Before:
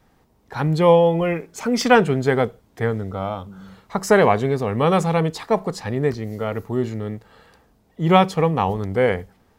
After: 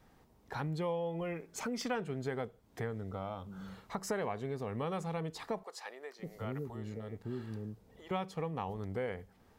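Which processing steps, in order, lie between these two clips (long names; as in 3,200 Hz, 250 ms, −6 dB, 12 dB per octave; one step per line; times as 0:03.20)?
downward compressor 3 to 1, threshold −34 dBFS, peak gain reduction 18.5 dB
0:05.63–0:08.11: multiband delay without the direct sound highs, lows 560 ms, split 480 Hz
level −5 dB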